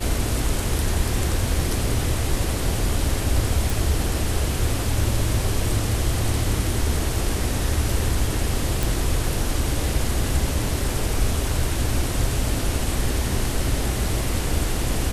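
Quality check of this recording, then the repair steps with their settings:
3.7 pop
8.83 pop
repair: de-click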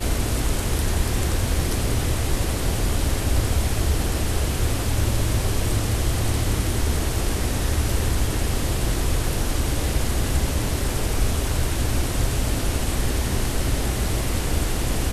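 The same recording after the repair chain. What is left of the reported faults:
none

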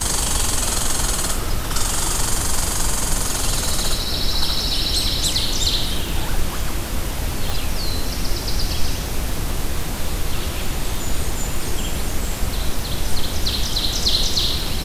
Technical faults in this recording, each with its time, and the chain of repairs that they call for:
crackle 41/s -24 dBFS
7.5 pop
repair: de-click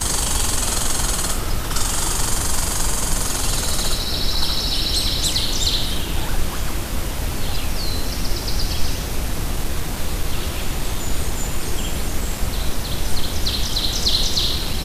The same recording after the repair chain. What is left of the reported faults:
7.5 pop

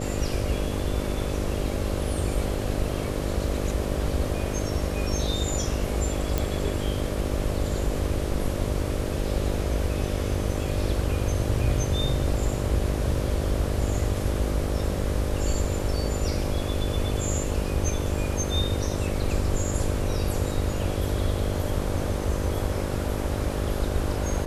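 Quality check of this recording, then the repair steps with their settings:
buzz 50 Hz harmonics 12 -31 dBFS
6.38 pop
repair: de-click; de-hum 50 Hz, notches 12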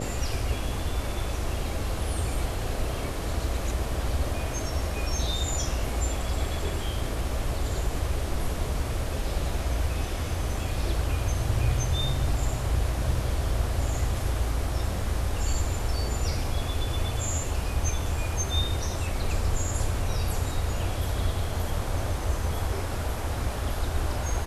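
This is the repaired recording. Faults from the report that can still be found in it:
none

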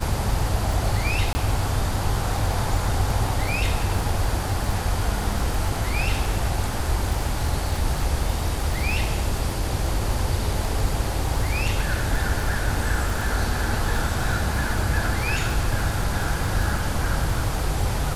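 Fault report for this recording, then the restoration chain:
crackle 30/s -26 dBFS
1.33–1.35 gap 20 ms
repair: de-click; interpolate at 1.33, 20 ms

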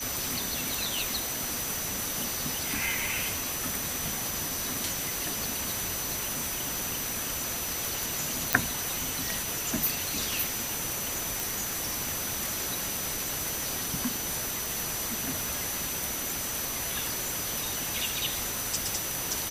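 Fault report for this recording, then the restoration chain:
crackle 27/s -37 dBFS
tone 6000 Hz -37 dBFS
8.53 pop -3 dBFS
11.4 pop
14.66 pop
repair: de-click; notch 6000 Hz, Q 30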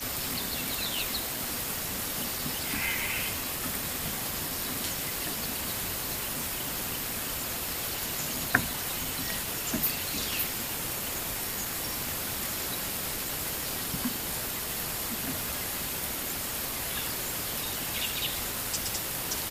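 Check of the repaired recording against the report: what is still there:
none

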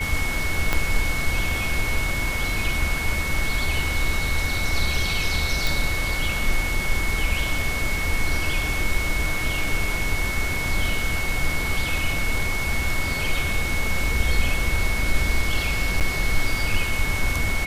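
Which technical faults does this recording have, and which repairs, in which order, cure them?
tone 2200 Hz -27 dBFS
0.73 pop -6 dBFS
5.67 pop
16–16.01 gap 7.8 ms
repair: de-click; notch 2200 Hz, Q 30; interpolate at 16, 7.8 ms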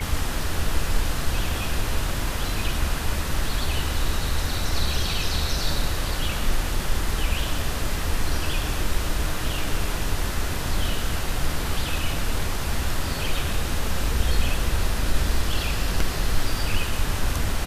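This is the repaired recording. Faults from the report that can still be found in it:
0.73 pop

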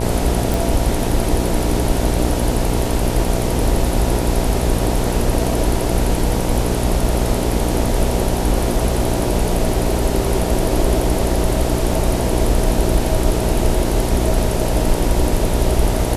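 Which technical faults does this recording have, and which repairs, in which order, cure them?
buzz 60 Hz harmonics 16 -21 dBFS
0.54 pop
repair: de-click; de-hum 60 Hz, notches 16

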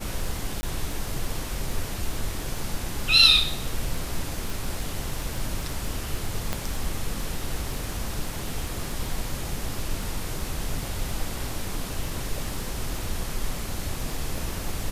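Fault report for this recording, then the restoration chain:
crackle 23/s -31 dBFS
0.61–0.63 gap 20 ms
4.5 pop
6.53 pop -11 dBFS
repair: de-click; interpolate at 0.61, 20 ms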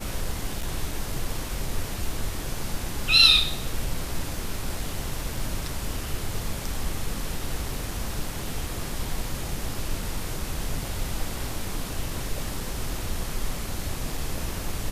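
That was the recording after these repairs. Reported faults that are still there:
6.53 pop

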